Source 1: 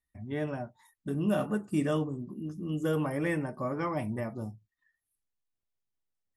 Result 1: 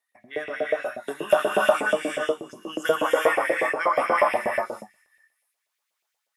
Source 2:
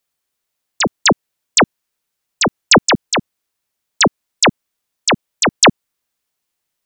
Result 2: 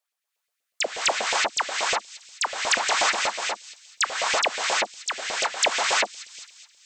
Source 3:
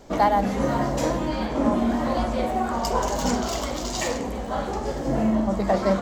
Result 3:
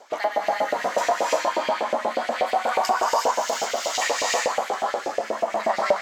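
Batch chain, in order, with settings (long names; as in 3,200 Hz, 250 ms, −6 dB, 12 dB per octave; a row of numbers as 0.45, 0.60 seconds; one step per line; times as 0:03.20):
rotating-speaker cabinet horn 0.65 Hz
delay with a high-pass on its return 212 ms, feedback 43%, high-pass 4,100 Hz, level −16.5 dB
reverb whose tail is shaped and stops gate 390 ms rising, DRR −3.5 dB
auto-filter high-pass saw up 8.3 Hz 520–2,600 Hz
downward compressor 2 to 1, threshold −24 dBFS
loudness normalisation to −24 LKFS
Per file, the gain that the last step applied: +11.0, −4.0, +3.0 decibels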